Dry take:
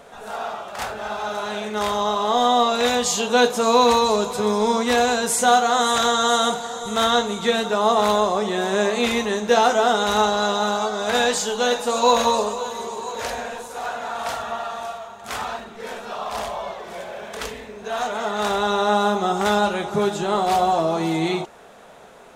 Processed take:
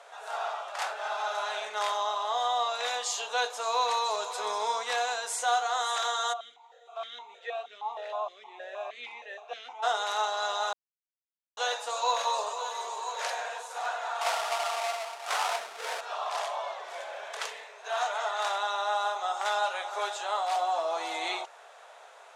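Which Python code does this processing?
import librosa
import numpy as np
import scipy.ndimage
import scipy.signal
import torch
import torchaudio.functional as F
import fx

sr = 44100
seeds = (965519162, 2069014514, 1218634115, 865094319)

y = fx.vowel_held(x, sr, hz=6.4, at=(6.32, 9.82), fade=0.02)
y = fx.halfwave_hold(y, sr, at=(14.21, 16.01))
y = fx.highpass(y, sr, hz=450.0, slope=24, at=(17.64, 20.56))
y = fx.edit(y, sr, fx.silence(start_s=10.73, length_s=0.84), tone=tone)
y = scipy.signal.sosfilt(scipy.signal.butter(4, 610.0, 'highpass', fs=sr, output='sos'), y)
y = fx.rider(y, sr, range_db=3, speed_s=0.5)
y = scipy.signal.sosfilt(scipy.signal.butter(2, 9100.0, 'lowpass', fs=sr, output='sos'), y)
y = y * librosa.db_to_amplitude(-6.5)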